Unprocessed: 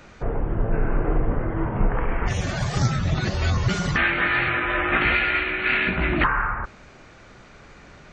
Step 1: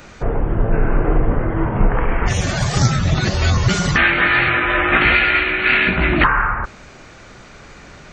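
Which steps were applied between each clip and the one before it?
high shelf 5900 Hz +8 dB; gain +6 dB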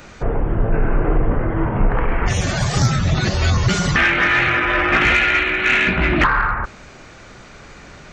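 soft clip -5.5 dBFS, distortion -22 dB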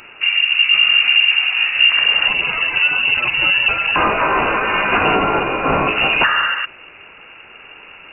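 inverted band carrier 2800 Hz

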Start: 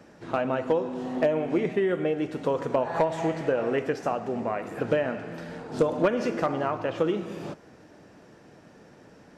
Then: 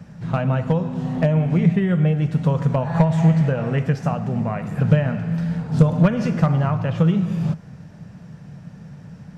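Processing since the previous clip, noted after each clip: resonant low shelf 230 Hz +12 dB, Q 3; gain +2.5 dB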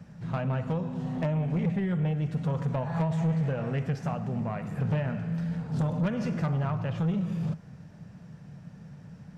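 soft clip -15 dBFS, distortion -11 dB; gain -7 dB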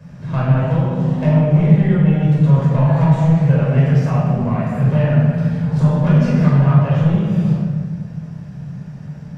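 reverb RT60 1.4 s, pre-delay 14 ms, DRR -6 dB; gain +1.5 dB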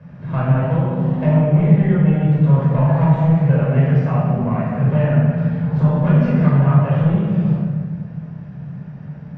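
LPF 2500 Hz 12 dB/oct; low shelf 73 Hz -6 dB

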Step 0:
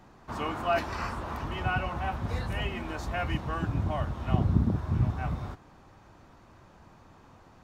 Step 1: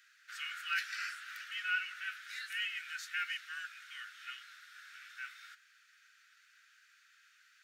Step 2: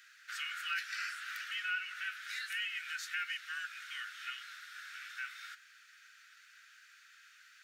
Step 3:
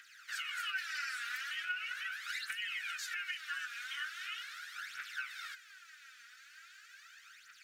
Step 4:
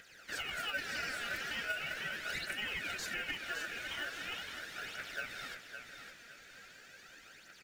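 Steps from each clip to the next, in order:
steep high-pass 1400 Hz 96 dB/oct; gain +1 dB
compressor 2:1, threshold -45 dBFS, peak gain reduction 9 dB; gain +5.5 dB
limiter -34 dBFS, peak gain reduction 9 dB; phaser 0.4 Hz, delay 4.3 ms, feedback 66%; gain +1 dB
in parallel at -10 dB: sample-rate reducer 2100 Hz, jitter 0%; on the sum: feedback echo 0.562 s, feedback 33%, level -8 dB

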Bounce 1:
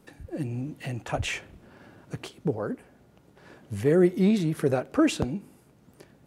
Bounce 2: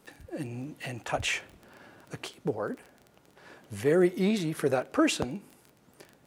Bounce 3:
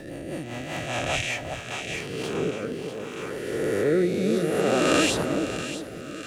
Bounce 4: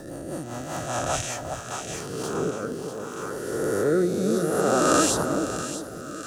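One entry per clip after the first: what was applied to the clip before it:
low shelf 330 Hz -10.5 dB; crackle 11/s -40 dBFS; gain +2 dB
spectral swells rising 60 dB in 2.32 s; split-band echo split 940 Hz, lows 0.385 s, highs 0.645 s, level -5.5 dB; rotary speaker horn 5 Hz, later 0.6 Hz, at 1.71
EQ curve 490 Hz 0 dB, 1400 Hz +6 dB, 2200 Hz -14 dB, 6000 Hz +6 dB

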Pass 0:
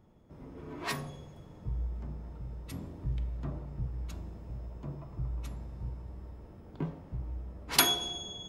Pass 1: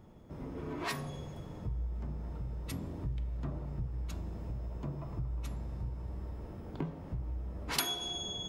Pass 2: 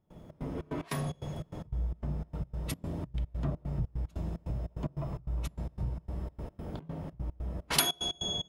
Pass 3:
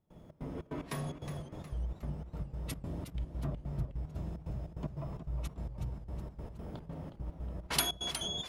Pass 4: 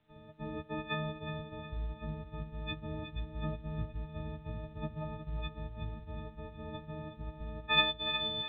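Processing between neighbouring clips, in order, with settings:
compressor 2.5:1, threshold -43 dBFS, peak gain reduction 16 dB; gain +6 dB
step gate ".xx.xx.x" 148 bpm -24 dB; thirty-one-band EQ 160 Hz +6 dB, 630 Hz +5 dB, 3150 Hz +3 dB, 10000 Hz +5 dB; gain +4 dB
warbling echo 0.366 s, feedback 50%, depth 122 cents, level -9.5 dB; gain -4 dB
frequency quantiser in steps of 6 st; µ-law 64 kbps 8000 Hz

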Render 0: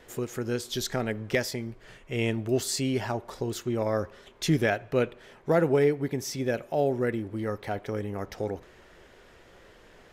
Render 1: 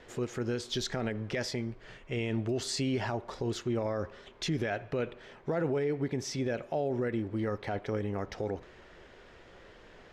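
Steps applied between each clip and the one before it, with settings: LPF 5600 Hz 12 dB/oct; limiter -23 dBFS, peak gain reduction 10.5 dB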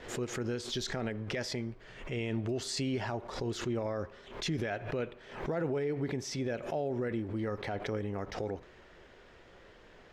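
backwards sustainer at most 91 dB/s; gain -2.5 dB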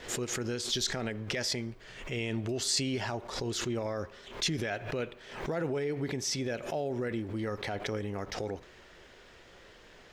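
high shelf 3000 Hz +10.5 dB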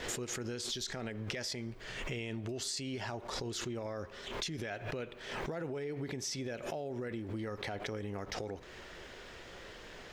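compressor 10:1, threshold -41 dBFS, peak gain reduction 15.5 dB; gain +5 dB

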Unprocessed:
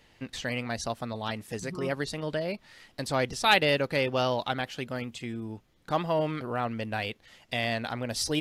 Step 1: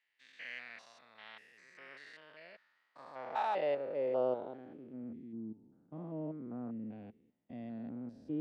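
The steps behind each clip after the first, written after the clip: stepped spectrum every 0.2 s; band-pass sweep 1900 Hz -> 250 Hz, 2.2–5.13; three-band expander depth 40%; gain -3 dB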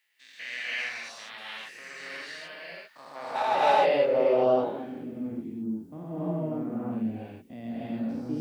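high shelf 3500 Hz +11.5 dB; non-linear reverb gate 0.33 s rising, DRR -7.5 dB; gain +3.5 dB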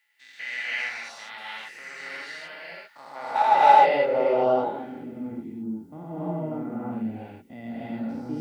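small resonant body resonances 850/1400/2000 Hz, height 11 dB, ringing for 40 ms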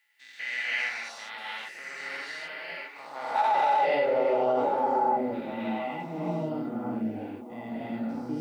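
low shelf 100 Hz -7.5 dB; on a send: delay with a stepping band-pass 0.66 s, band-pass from 370 Hz, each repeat 1.4 oct, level -5 dB; on the sum: limiter -16.5 dBFS, peak gain reduction 11.5 dB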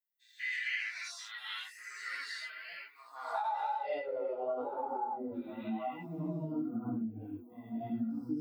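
per-bin expansion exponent 2; compressor 12:1, threshold -38 dBFS, peak gain reduction 15 dB; chorus 1 Hz, delay 16.5 ms, depth 3.8 ms; gain +8 dB

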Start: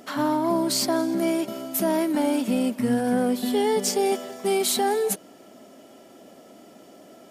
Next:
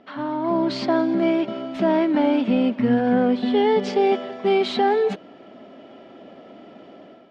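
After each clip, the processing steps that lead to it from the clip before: LPF 3500 Hz 24 dB/oct; AGC gain up to 10 dB; gain -5 dB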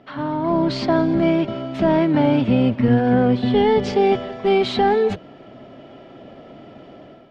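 octaver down 1 oct, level -5 dB; gain +2 dB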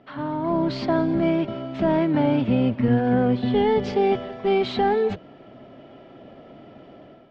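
air absorption 80 m; gain -3.5 dB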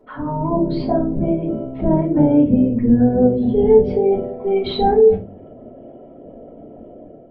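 formant sharpening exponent 2; shoebox room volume 120 m³, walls furnished, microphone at 4.5 m; gain -5 dB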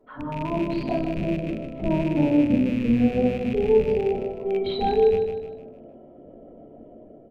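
rattling part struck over -23 dBFS, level -21 dBFS; on a send: feedback echo 0.154 s, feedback 45%, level -7 dB; on the sum: gain -7.5 dB

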